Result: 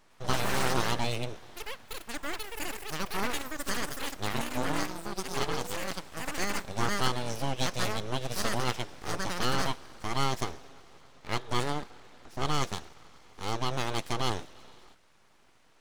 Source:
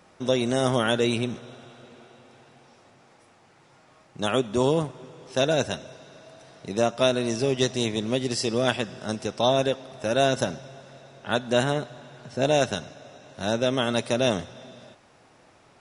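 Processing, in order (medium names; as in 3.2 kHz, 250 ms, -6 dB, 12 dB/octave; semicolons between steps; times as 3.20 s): ever faster or slower copies 104 ms, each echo +7 st, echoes 3; 4.32–5.90 s: ring modulator 110 Hz -> 280 Hz; full-wave rectifier; trim -5 dB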